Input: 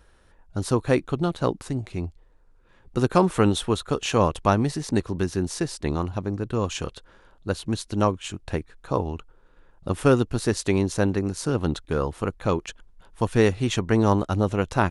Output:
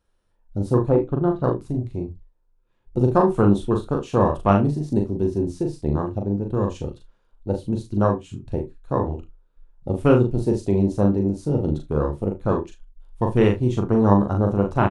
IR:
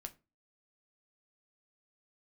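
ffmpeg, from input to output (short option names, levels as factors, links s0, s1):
-filter_complex "[0:a]asettb=1/sr,asplit=3[s0][s1][s2];[s0]atrim=end=0.894[s3];[s1]atrim=start=0.89:end=1.44,asetpts=PTS-STARTPTS,afade=t=in:d=0.004:c=qsin,afade=t=out:st=0.546:d=0.004:c=qsin,lowpass=2800[s4];[s2]atrim=start=1.436[s5];[s3][s4]acrossfade=d=0.004:c1=hsin:c2=qsin[s6];[s6][s5]acrossfade=d=0.004:c1=qsin:c2=hsin,afwtdn=0.0398,equalizer=f=1700:w=2.1:g=-5.5,aecho=1:1:40|74:0.631|0.158,asplit=2[s7][s8];[1:a]atrim=start_sample=2205,atrim=end_sample=3969[s9];[s8][s9]afir=irnorm=-1:irlink=0,volume=2.99[s10];[s7][s10]amix=inputs=2:normalize=0,volume=0.422"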